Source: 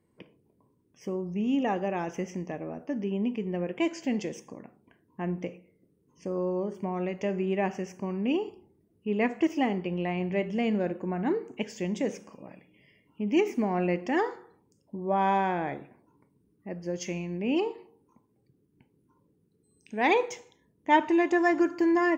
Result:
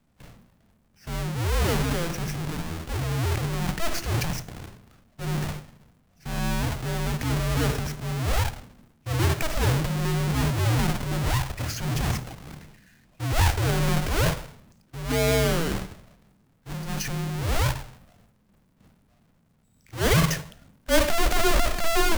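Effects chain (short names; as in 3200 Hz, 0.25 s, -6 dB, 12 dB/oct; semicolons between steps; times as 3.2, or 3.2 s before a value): half-waves squared off; transient shaper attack -6 dB, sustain +10 dB; frequency shift -330 Hz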